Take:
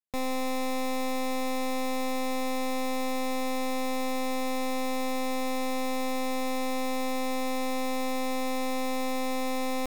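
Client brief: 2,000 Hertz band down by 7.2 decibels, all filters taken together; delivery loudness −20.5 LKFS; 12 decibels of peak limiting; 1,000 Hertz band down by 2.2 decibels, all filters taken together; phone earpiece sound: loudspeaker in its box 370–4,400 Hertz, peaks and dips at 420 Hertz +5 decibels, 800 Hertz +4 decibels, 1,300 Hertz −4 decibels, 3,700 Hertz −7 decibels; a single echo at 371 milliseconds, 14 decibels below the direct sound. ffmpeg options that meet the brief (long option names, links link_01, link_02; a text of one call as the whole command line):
ffmpeg -i in.wav -af "equalizer=frequency=1000:width_type=o:gain=-6,equalizer=frequency=2000:width_type=o:gain=-6.5,alimiter=level_in=15.5dB:limit=-24dB:level=0:latency=1,volume=-15.5dB,highpass=370,equalizer=frequency=420:width_type=q:width=4:gain=5,equalizer=frequency=800:width_type=q:width=4:gain=4,equalizer=frequency=1300:width_type=q:width=4:gain=-4,equalizer=frequency=3700:width_type=q:width=4:gain=-7,lowpass=frequency=4400:width=0.5412,lowpass=frequency=4400:width=1.3066,aecho=1:1:371:0.2,volume=25.5dB" out.wav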